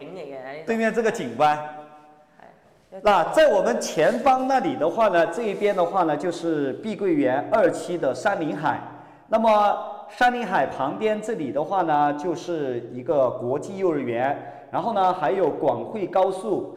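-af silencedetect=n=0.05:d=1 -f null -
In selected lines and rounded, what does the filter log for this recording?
silence_start: 1.69
silence_end: 3.05 | silence_duration: 1.36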